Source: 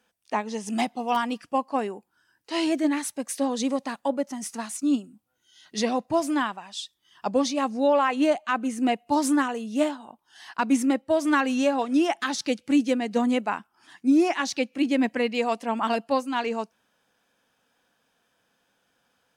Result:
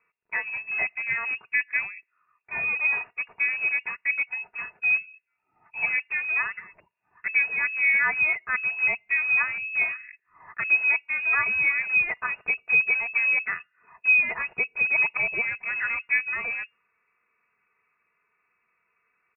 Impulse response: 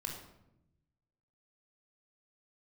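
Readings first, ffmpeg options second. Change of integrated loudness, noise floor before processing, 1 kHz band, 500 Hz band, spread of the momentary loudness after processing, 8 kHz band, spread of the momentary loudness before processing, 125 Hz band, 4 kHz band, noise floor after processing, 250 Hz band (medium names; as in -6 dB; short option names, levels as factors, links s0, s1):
+2.0 dB, -72 dBFS, -11.0 dB, -19.5 dB, 12 LU, under -40 dB, 10 LU, no reading, under -20 dB, -76 dBFS, under -30 dB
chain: -filter_complex "[0:a]aecho=1:1:3.8:0.62,asplit=2[s0][s1];[s1]aeval=exprs='(mod(15*val(0)+1,2)-1)/15':c=same,volume=0.266[s2];[s0][s2]amix=inputs=2:normalize=0,lowpass=f=2400:t=q:w=0.5098,lowpass=f=2400:t=q:w=0.6013,lowpass=f=2400:t=q:w=0.9,lowpass=f=2400:t=q:w=2.563,afreqshift=-2800,volume=0.631"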